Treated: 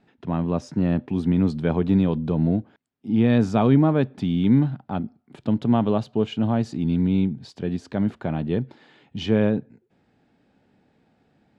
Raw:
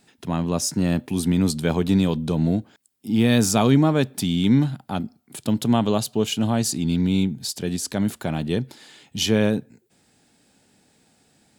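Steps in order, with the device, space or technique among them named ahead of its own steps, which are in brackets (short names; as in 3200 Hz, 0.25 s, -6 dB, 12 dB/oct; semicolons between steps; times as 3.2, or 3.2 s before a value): phone in a pocket (LPF 3300 Hz 12 dB/oct; high shelf 2400 Hz -11 dB)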